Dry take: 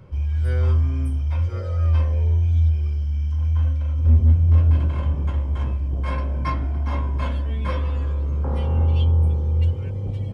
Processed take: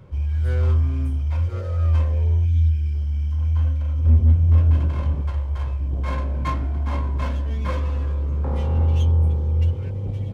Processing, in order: 2.46–2.94 spectral gain 350–1500 Hz -13 dB; 5.21–5.79 bell 230 Hz -13.5 dB 1.2 oct; running maximum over 5 samples

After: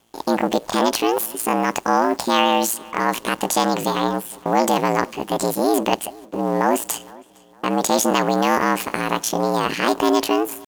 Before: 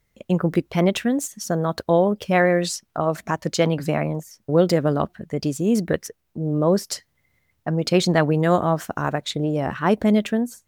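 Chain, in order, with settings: per-bin compression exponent 0.6; gate -43 dBFS, range -14 dB; high shelf 2700 Hz +5 dB; in parallel at +0.5 dB: limiter -8 dBFS, peak gain reduction 9 dB; on the sum: pitch shift +8 st; ring modulator 57 Hz; on a send: darkening echo 0.461 s, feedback 36%, low-pass 4400 Hz, level -23 dB; on the sum: gain -4.5 dB

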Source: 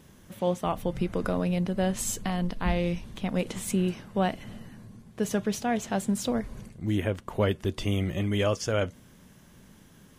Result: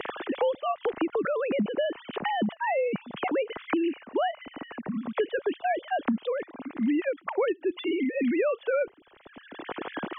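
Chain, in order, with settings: sine-wave speech; three-band squash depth 100%

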